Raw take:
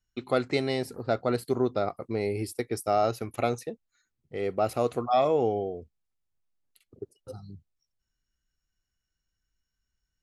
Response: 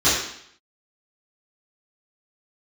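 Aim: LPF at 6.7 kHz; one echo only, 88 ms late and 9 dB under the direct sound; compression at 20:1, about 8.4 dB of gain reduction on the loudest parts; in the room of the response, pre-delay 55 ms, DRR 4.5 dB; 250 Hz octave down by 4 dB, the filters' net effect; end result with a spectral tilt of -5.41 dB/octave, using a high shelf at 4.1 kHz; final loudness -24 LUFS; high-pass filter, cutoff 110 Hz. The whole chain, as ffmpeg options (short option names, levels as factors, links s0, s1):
-filter_complex "[0:a]highpass=110,lowpass=6700,equalizer=f=250:t=o:g=-5,highshelf=f=4100:g=-8.5,acompressor=threshold=0.0398:ratio=20,aecho=1:1:88:0.355,asplit=2[s0][s1];[1:a]atrim=start_sample=2205,adelay=55[s2];[s1][s2]afir=irnorm=-1:irlink=0,volume=0.0631[s3];[s0][s3]amix=inputs=2:normalize=0,volume=2.99"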